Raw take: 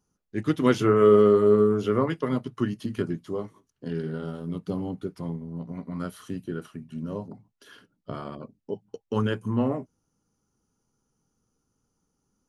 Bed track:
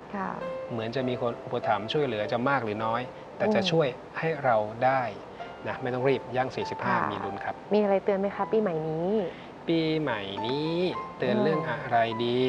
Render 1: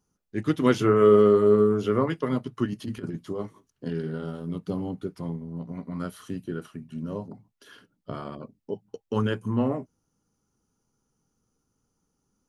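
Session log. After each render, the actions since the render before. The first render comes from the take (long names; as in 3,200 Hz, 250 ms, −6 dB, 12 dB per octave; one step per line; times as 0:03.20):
0:02.65–0:03.90: compressor whose output falls as the input rises −30 dBFS, ratio −0.5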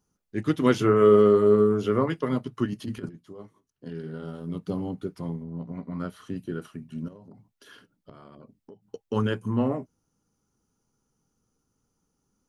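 0:03.09–0:04.61: fade in quadratic, from −12 dB
0:05.43–0:06.36: low-pass filter 3,400 Hz 6 dB per octave
0:07.08–0:08.84: downward compressor 10 to 1, threshold −43 dBFS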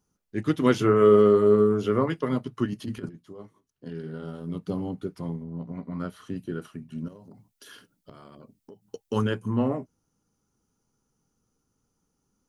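0:07.09–0:09.24: high-shelf EQ 4,400 Hz +10.5 dB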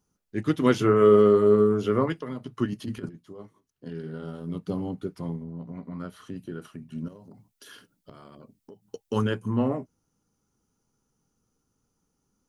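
0:02.12–0:02.52: downward compressor, threshold −30 dBFS
0:05.50–0:06.86: downward compressor 1.5 to 1, threshold −37 dBFS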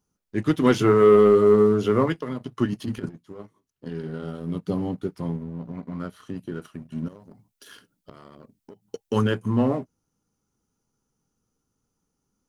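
leveller curve on the samples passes 1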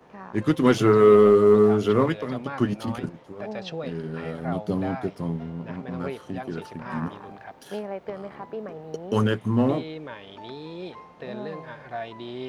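mix in bed track −9.5 dB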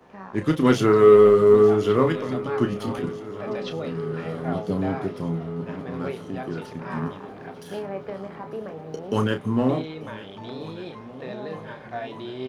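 double-tracking delay 31 ms −8 dB
feedback echo with a long and a short gap by turns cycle 1,494 ms, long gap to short 1.5 to 1, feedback 62%, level −18 dB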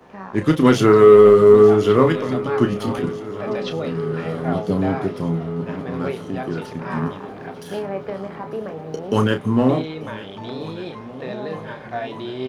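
level +5 dB
brickwall limiter −3 dBFS, peak gain reduction 2 dB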